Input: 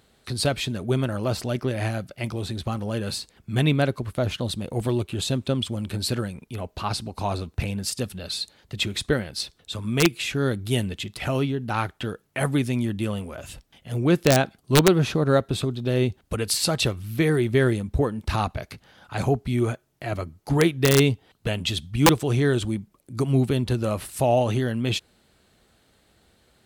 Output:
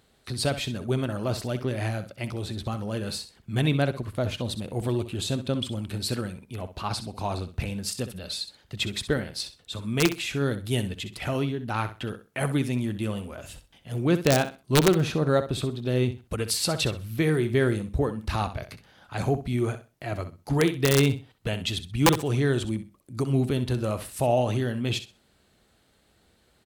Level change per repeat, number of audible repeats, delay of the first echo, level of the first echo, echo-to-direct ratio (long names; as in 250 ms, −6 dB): −13.0 dB, 2, 64 ms, −12.0 dB, −12.0 dB